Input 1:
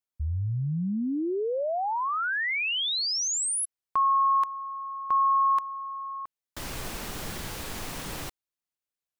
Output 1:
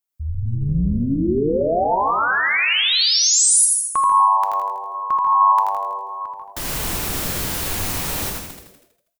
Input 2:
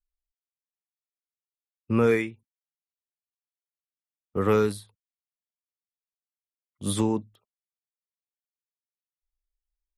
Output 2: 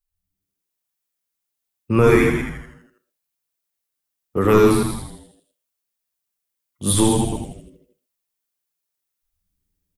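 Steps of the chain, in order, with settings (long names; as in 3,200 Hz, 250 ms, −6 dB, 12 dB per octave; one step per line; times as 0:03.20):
delay that plays each chunk backwards 115 ms, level −7 dB
high-shelf EQ 8,400 Hz +9 dB
reverb whose tail is shaped and stops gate 160 ms falling, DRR 10 dB
automatic gain control gain up to 5 dB
echo with shifted repeats 81 ms, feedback 55%, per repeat −100 Hz, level −4.5 dB
level +1.5 dB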